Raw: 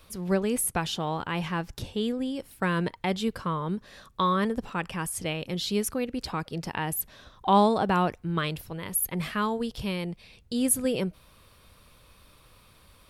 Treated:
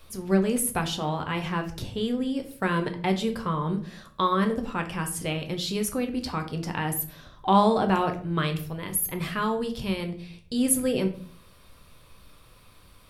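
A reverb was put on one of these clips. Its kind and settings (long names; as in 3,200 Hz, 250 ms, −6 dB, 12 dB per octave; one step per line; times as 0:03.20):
rectangular room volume 47 cubic metres, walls mixed, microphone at 0.37 metres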